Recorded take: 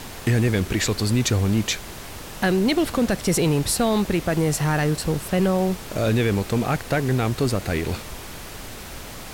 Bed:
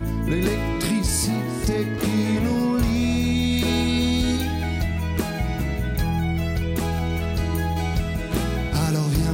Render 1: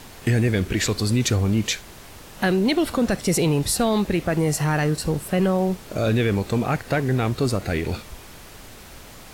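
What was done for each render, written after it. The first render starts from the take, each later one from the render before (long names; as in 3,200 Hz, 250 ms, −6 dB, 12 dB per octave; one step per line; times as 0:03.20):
noise reduction from a noise print 6 dB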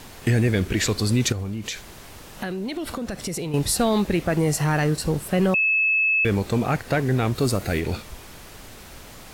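0:01.32–0:03.54: downward compressor, threshold −26 dBFS
0:05.54–0:06.25: beep over 2,600 Hz −17 dBFS
0:07.35–0:07.80: high-shelf EQ 8,600 Hz +8 dB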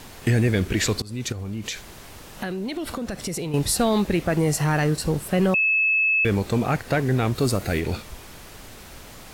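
0:01.02–0:01.59: fade in, from −24 dB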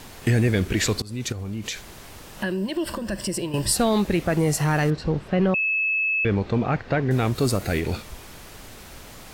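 0:02.42–0:03.73: EQ curve with evenly spaced ripples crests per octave 1.3, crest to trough 11 dB
0:04.90–0:07.11: high-frequency loss of the air 200 metres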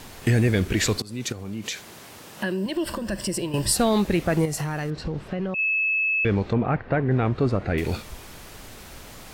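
0:00.98–0:02.66: high-pass filter 130 Hz
0:04.45–0:05.59: downward compressor, threshold −24 dBFS
0:06.53–0:07.78: low-pass filter 2,100 Hz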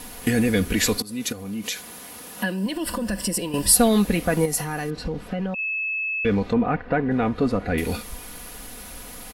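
parametric band 11,000 Hz +14.5 dB 0.31 octaves
comb filter 4.1 ms, depth 65%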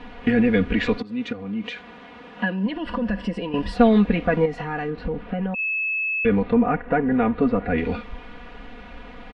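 low-pass filter 3,100 Hz 24 dB per octave
comb filter 4.2 ms, depth 43%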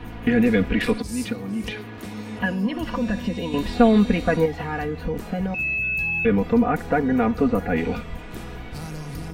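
mix in bed −13 dB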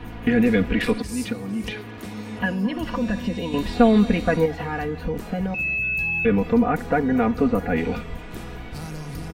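single-tap delay 223 ms −22 dB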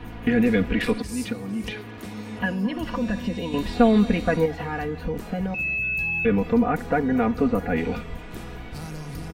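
level −1.5 dB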